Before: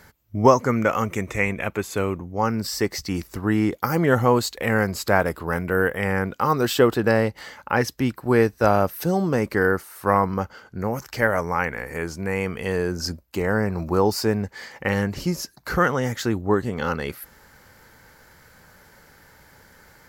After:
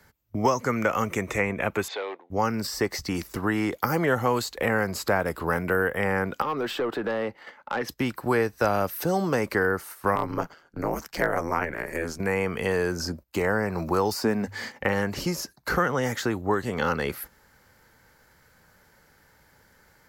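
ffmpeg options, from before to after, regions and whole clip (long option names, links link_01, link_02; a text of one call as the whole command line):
ffmpeg -i in.wav -filter_complex "[0:a]asettb=1/sr,asplit=3[link_01][link_02][link_03];[link_01]atrim=end=1.884[link_04];[link_02]atrim=start=1.88:end=2.3,asetpts=PTS-STARTPTS,afade=type=in:duration=0.004:curve=qsin,afade=type=out:start_time=0.416:duration=0.004:curve=qsin,acompressor=threshold=-26dB:ratio=5:attack=3.2:release=140:knee=1:detection=peak,volume=25dB,asoftclip=hard,volume=-25dB,highpass=frequency=440:width=0.5412,highpass=frequency=440:width=1.3066,equalizer=frequency=800:width_type=q:width=4:gain=6,equalizer=frequency=1200:width_type=q:width=4:gain=-5,equalizer=frequency=1900:width_type=q:width=4:gain=5,equalizer=frequency=3700:width_type=q:width=4:gain=8,lowpass=frequency=4200:width=0.5412,lowpass=frequency=4200:width=1.3066[link_05];[link_03]atrim=start=2.296[link_06];[link_04][link_05]acrossfade=duration=0.004:curve1=hsin:curve2=qsin[link_07];[link_07][link_06]acrossfade=duration=0.004:curve1=qsin:curve2=hsin,asettb=1/sr,asplit=3[link_08][link_09][link_10];[link_08]atrim=end=6.424[link_11];[link_09]atrim=start=6.42:end=7.89,asetpts=PTS-STARTPTS,afade=type=in:duration=0.004:curve=qsin,afade=type=out:start_time=1.466:duration=0.004:curve=qsin,acrossover=split=210 3300:gain=0.141 1 0.178[link_12][link_13][link_14];[link_12][link_13][link_14]amix=inputs=3:normalize=0,acompressor=threshold=-28dB:ratio=2:attack=3.2:release=140:knee=1:detection=peak,aeval=exprs='(tanh(12.6*val(0)+0.1)-tanh(0.1))/12.6':channel_layout=same[link_15];[link_10]atrim=start=7.886[link_16];[link_11][link_15]acrossfade=duration=0.004:curve1=hsin:curve2=qsin[link_17];[link_17][link_16]acrossfade=duration=0.004:curve1=qsin:curve2=hsin,asettb=1/sr,asplit=3[link_18][link_19][link_20];[link_18]atrim=end=10.154[link_21];[link_19]atrim=start=10.15:end=12.2,asetpts=PTS-STARTPTS,afade=type=in:duration=0.004:curve=qsin,afade=type=out:start_time=2.046:duration=0.004:curve=qsin,lowshelf=frequency=62:gain=-10.5,aeval=exprs='val(0)*sin(2*PI*81*n/s)':channel_layout=same,asoftclip=type=hard:threshold=-9dB[link_22];[link_20]atrim=start=12.196[link_23];[link_21][link_22]acrossfade=duration=0.004:curve1=hsin:curve2=qsin[link_24];[link_24][link_23]acrossfade=duration=0.004:curve1=qsin:curve2=hsin,asettb=1/sr,asplit=3[link_25][link_26][link_27];[link_25]atrim=end=14.234[link_28];[link_26]atrim=start=14.23:end=14.8,asetpts=PTS-STARTPTS,afade=type=in:duration=0.004:curve=qsin,afade=type=out:start_time=0.566:duration=0.004:curve=qsin,equalizer=frequency=240:width=2.3:gain=11.5,bandreject=frequency=50:width_type=h:width=6,bandreject=frequency=100:width_type=h:width=6[link_29];[link_27]atrim=start=14.796[link_30];[link_28][link_29]acrossfade=duration=0.004:curve1=hsin:curve2=qsin[link_31];[link_31][link_30]acrossfade=duration=0.004:curve1=qsin:curve2=hsin,agate=range=-11dB:threshold=-39dB:ratio=16:detection=peak,acrossover=split=180|510|1600[link_32][link_33][link_34][link_35];[link_32]acompressor=threshold=-40dB:ratio=4[link_36];[link_33]acompressor=threshold=-33dB:ratio=4[link_37];[link_34]acompressor=threshold=-29dB:ratio=4[link_38];[link_35]acompressor=threshold=-36dB:ratio=4[link_39];[link_36][link_37][link_38][link_39]amix=inputs=4:normalize=0,volume=3.5dB" out.wav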